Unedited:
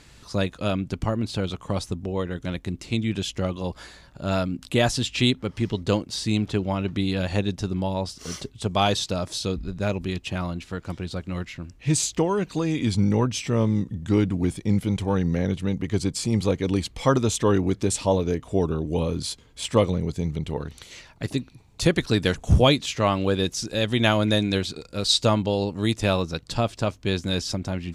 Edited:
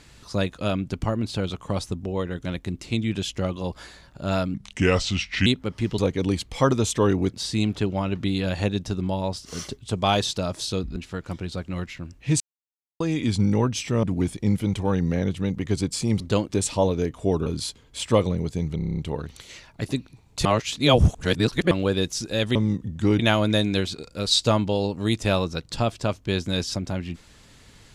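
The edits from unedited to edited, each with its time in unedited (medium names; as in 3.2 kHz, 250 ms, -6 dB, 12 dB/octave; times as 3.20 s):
4.54–5.25 s: speed 77%
5.77–6.06 s: swap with 16.43–17.78 s
9.69–10.55 s: delete
11.99–12.59 s: mute
13.62–14.26 s: move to 23.97 s
18.75–19.09 s: delete
20.39 s: stutter 0.03 s, 8 plays
21.87–23.13 s: reverse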